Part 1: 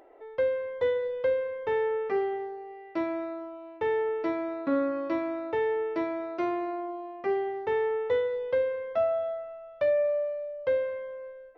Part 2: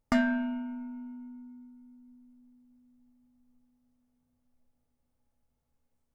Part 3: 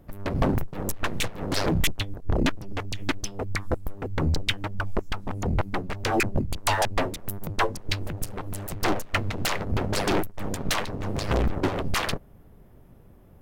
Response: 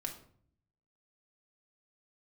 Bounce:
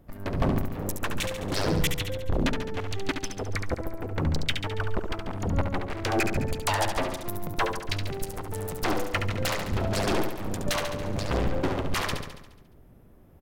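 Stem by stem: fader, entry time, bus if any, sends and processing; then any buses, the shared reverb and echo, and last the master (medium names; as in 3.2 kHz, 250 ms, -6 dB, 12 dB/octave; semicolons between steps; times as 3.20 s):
-11.0 dB, 0.85 s, no send, no echo send, low-pass 1.5 kHz
-18.0 dB, 0.00 s, no send, no echo send, compression 2:1, threshold -38 dBFS, peak gain reduction 9.5 dB
-3.0 dB, 0.00 s, no send, echo send -6.5 dB, none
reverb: none
echo: feedback delay 70 ms, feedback 59%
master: none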